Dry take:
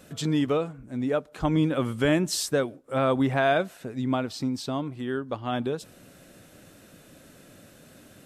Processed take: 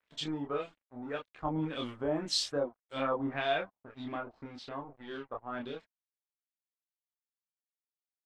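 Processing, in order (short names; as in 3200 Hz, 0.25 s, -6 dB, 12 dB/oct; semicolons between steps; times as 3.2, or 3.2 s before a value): tone controls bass -3 dB, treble +15 dB, from 3 s treble +4 dB; crossover distortion -39 dBFS; LFO low-pass sine 1.8 Hz 800–3700 Hz; chorus voices 4, 0.46 Hz, delay 27 ms, depth 2.4 ms; gain -7 dB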